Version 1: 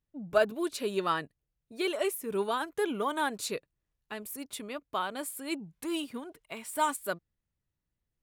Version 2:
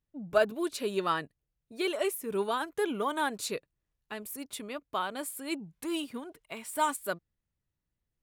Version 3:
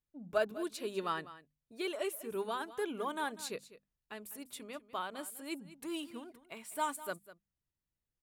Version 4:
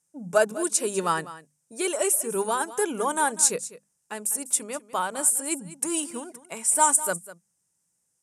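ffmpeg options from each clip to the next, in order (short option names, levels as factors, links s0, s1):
-af anull
-af "bandreject=f=50:t=h:w=6,bandreject=f=100:t=h:w=6,bandreject=f=150:t=h:w=6,bandreject=f=200:t=h:w=6,bandreject=f=250:t=h:w=6,aecho=1:1:199:0.158,volume=0.473"
-af "aexciter=amount=7.6:drive=4.5:freq=5100,highpass=140,equalizer=f=170:t=q:w=4:g=8,equalizer=f=510:t=q:w=4:g=5,equalizer=f=870:t=q:w=4:g=6,equalizer=f=1500:t=q:w=4:g=3,equalizer=f=4400:t=q:w=4:g=-7,equalizer=f=8700:t=q:w=4:g=4,lowpass=f=9500:w=0.5412,lowpass=f=9500:w=1.3066,volume=2.66"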